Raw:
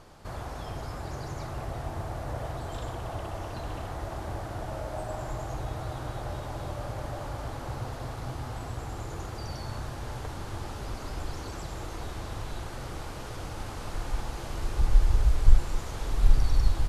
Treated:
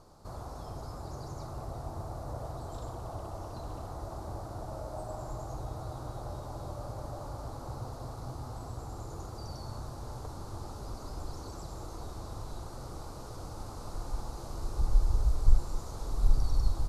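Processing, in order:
flat-topped bell 2,300 Hz −12.5 dB 1.3 octaves
level −4.5 dB

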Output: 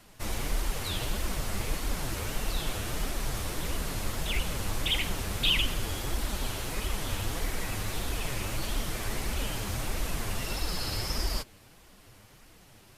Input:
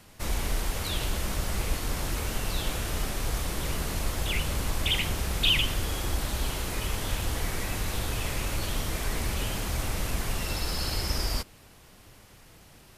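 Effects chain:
flanger 1.6 Hz, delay 2.6 ms, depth 8.1 ms, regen +20%
level +1.5 dB

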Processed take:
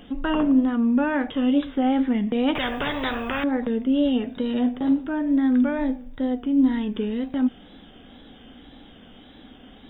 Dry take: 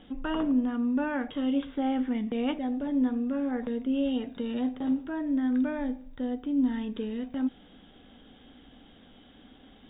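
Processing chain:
tape wow and flutter 70 cents
0:02.55–0:03.44: every bin compressed towards the loudest bin 4 to 1
level +7 dB

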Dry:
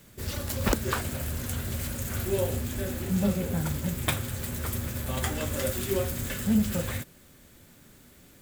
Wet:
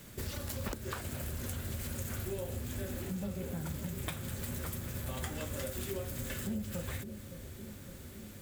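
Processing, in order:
downward compressor 6 to 1, threshold −39 dBFS, peak gain reduction 19 dB
on a send: bucket-brigade delay 561 ms, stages 2,048, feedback 75%, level −10.5 dB
on the sum: level +2.5 dB

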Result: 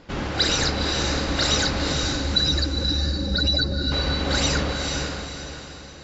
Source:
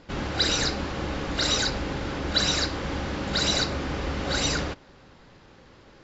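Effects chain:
0:01.93–0:03.92: expanding power law on the bin magnitudes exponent 2.7
feedback delay with all-pass diffusion 474 ms, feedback 41%, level −4 dB
level +2.5 dB

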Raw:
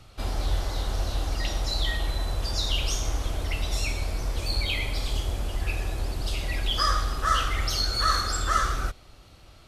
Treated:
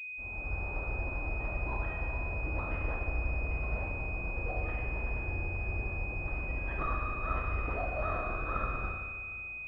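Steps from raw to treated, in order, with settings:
fade in at the beginning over 0.74 s
spring reverb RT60 1.8 s, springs 34/57 ms, chirp 30 ms, DRR 1 dB
switching amplifier with a slow clock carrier 2,500 Hz
level −7.5 dB

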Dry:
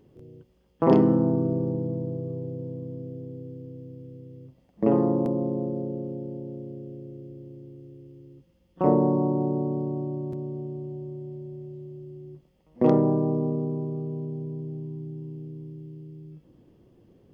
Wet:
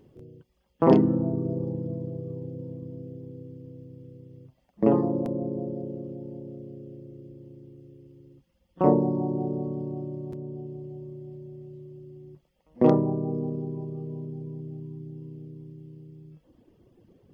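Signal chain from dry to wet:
reverb reduction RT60 1 s
level +1.5 dB

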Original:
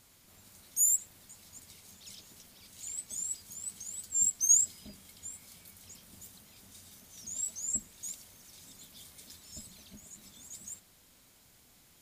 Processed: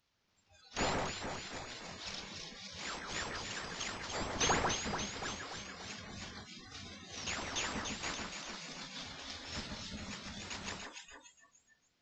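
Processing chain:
variable-slope delta modulation 32 kbit/s
delay that swaps between a low-pass and a high-pass 145 ms, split 2,100 Hz, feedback 76%, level −2.5 dB
noise reduction from a noise print of the clip's start 24 dB
level +6 dB

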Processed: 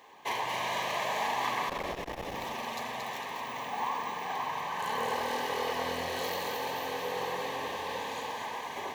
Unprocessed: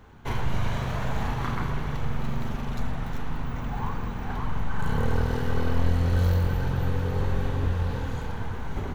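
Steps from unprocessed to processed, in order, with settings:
high-pass filter 680 Hz 12 dB per octave
0:01.69–0:02.35: frequency shifter −420 Hz
Butterworth band-reject 1,400 Hz, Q 2.8
echo with a time of its own for lows and highs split 1,500 Hz, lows 95 ms, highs 226 ms, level −4.5 dB
saturating transformer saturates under 810 Hz
level +4.5 dB

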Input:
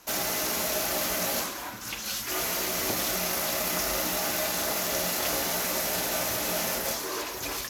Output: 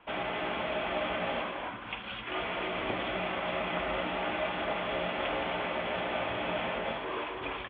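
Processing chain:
Chebyshev low-pass with heavy ripple 3,400 Hz, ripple 3 dB
slap from a distant wall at 45 metres, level −8 dB

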